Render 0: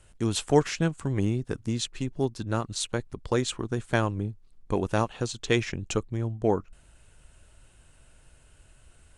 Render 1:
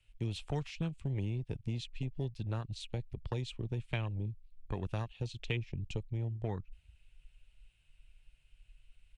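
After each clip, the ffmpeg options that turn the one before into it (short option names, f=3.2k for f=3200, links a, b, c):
-filter_complex "[0:a]afwtdn=0.0251,firequalizer=gain_entry='entry(130,0);entry(250,-11);entry(740,-7);entry(1500,-6);entry(2400,11);entry(6500,-6)':delay=0.05:min_phase=1,acrossover=split=230|1200|2900[a][b][c][d];[a]acompressor=threshold=-37dB:ratio=4[e];[b]acompressor=threshold=-42dB:ratio=4[f];[c]acompressor=threshold=-57dB:ratio=4[g];[d]acompressor=threshold=-45dB:ratio=4[h];[e][f][g][h]amix=inputs=4:normalize=0,volume=1dB"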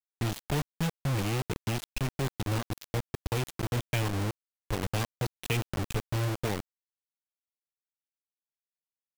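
-af "acrusher=bits=5:mix=0:aa=0.000001,volume=4.5dB"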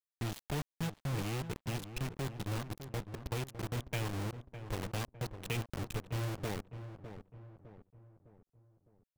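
-filter_complex "[0:a]asplit=2[a][b];[b]adelay=607,lowpass=f=1.4k:p=1,volume=-10dB,asplit=2[c][d];[d]adelay=607,lowpass=f=1.4k:p=1,volume=0.47,asplit=2[e][f];[f]adelay=607,lowpass=f=1.4k:p=1,volume=0.47,asplit=2[g][h];[h]adelay=607,lowpass=f=1.4k:p=1,volume=0.47,asplit=2[i][j];[j]adelay=607,lowpass=f=1.4k:p=1,volume=0.47[k];[a][c][e][g][i][k]amix=inputs=6:normalize=0,volume=-7dB"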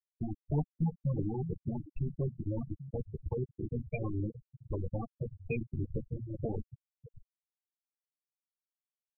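-af "aemphasis=mode=reproduction:type=50fm,aecho=1:1:13|64:0.668|0.178,afftfilt=real='re*gte(hypot(re,im),0.0447)':imag='im*gte(hypot(re,im),0.0447)':win_size=1024:overlap=0.75,volume=3.5dB"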